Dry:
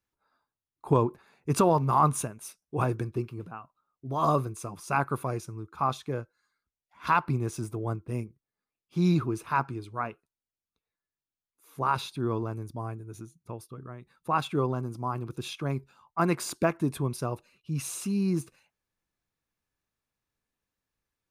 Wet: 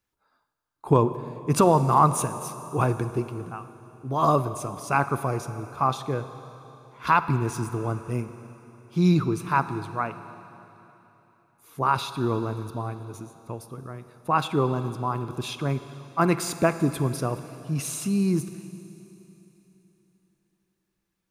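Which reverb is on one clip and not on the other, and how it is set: Schroeder reverb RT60 3.4 s, DRR 11.5 dB; gain +4 dB

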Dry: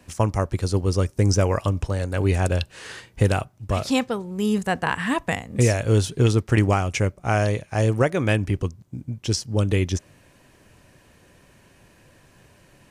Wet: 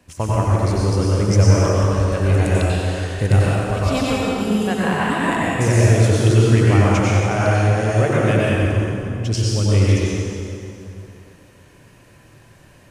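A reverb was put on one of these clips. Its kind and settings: plate-style reverb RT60 2.8 s, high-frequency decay 0.75×, pre-delay 80 ms, DRR -7 dB; gain -3 dB

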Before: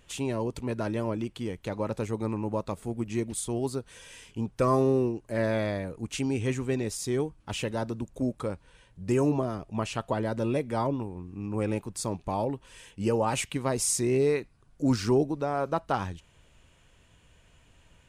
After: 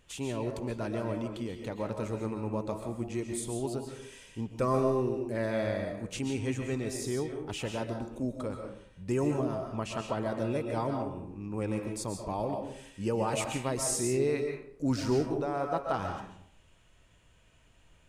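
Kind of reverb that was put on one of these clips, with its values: digital reverb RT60 0.63 s, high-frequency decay 0.65×, pre-delay 95 ms, DRR 3.5 dB; gain -4.5 dB

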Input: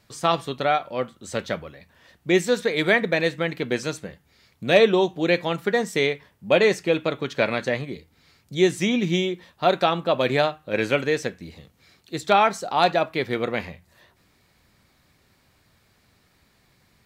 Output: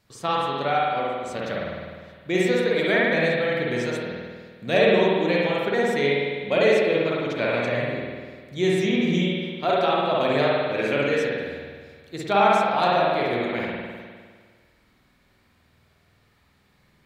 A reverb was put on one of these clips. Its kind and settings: spring tank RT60 1.7 s, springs 50 ms, chirp 25 ms, DRR -5 dB; gain -6 dB

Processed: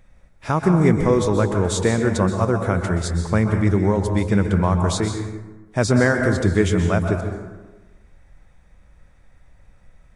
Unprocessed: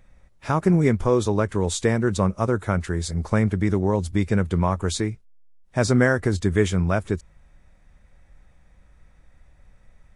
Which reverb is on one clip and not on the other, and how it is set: plate-style reverb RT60 1.2 s, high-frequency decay 0.5×, pre-delay 0.115 s, DRR 4.5 dB; gain +1.5 dB

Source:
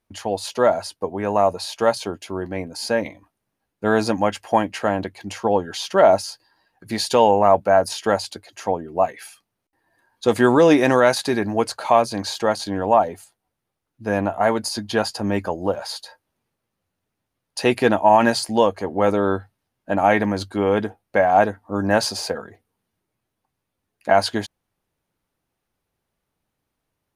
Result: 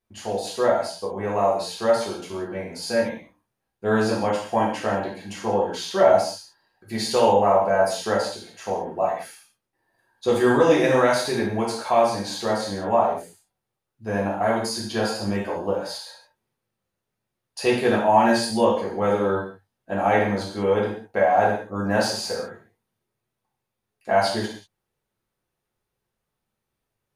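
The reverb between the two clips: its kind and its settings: non-linear reverb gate 0.22 s falling, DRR -5.5 dB; gain -9 dB

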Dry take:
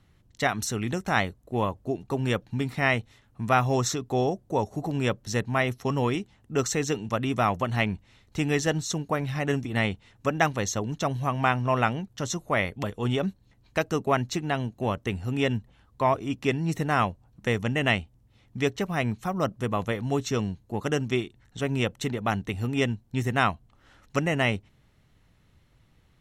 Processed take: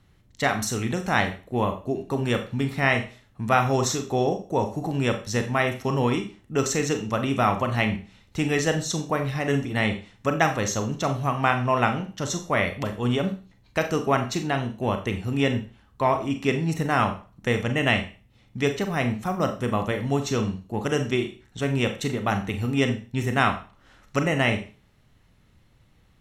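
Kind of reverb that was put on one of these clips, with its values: Schroeder reverb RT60 0.36 s, combs from 29 ms, DRR 6 dB; gain +1.5 dB

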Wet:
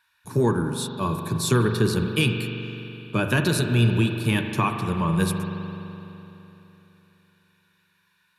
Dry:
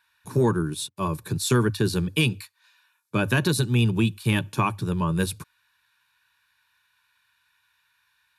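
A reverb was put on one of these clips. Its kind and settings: spring tank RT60 3.3 s, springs 42 ms, chirp 50 ms, DRR 4.5 dB

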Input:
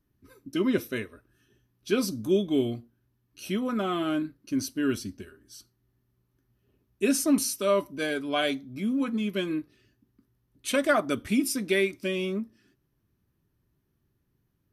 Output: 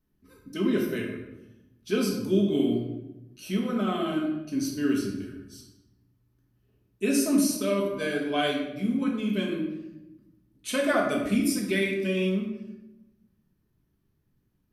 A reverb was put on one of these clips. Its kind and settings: shoebox room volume 370 m³, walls mixed, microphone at 1.5 m; gain -4 dB

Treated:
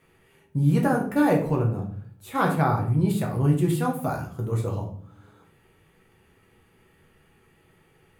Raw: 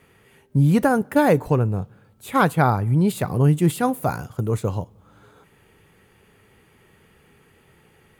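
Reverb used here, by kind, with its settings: shoebox room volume 59 m³, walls mixed, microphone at 0.71 m; gain -8 dB

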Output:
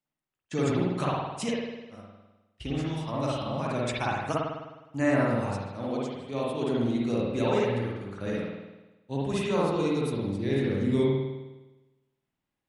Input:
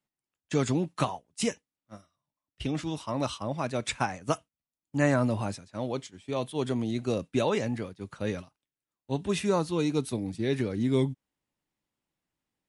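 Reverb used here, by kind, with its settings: spring tank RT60 1.1 s, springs 51 ms, chirp 30 ms, DRR -5.5 dB; gain -5 dB

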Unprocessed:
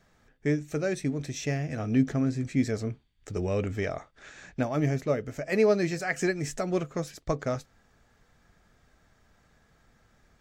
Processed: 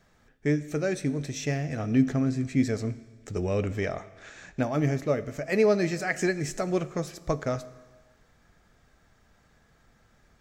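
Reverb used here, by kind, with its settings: Schroeder reverb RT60 1.4 s, combs from 27 ms, DRR 15.5 dB; gain +1 dB

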